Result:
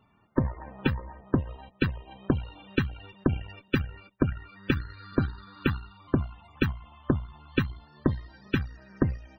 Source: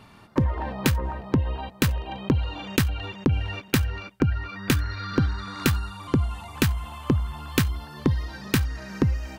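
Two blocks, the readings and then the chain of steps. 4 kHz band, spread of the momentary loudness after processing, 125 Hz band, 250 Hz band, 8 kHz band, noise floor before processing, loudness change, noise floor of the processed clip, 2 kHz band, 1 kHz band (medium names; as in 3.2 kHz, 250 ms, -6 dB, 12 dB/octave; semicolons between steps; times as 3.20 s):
-9.0 dB, 7 LU, -5.5 dB, -2.5 dB, under -25 dB, -49 dBFS, -4.5 dB, -63 dBFS, -4.0 dB, -7.0 dB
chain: Chebyshev shaper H 3 -23 dB, 4 -33 dB, 7 -27 dB, 8 -26 dB, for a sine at -7 dBFS; loudest bins only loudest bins 64; upward expansion 1.5:1, over -33 dBFS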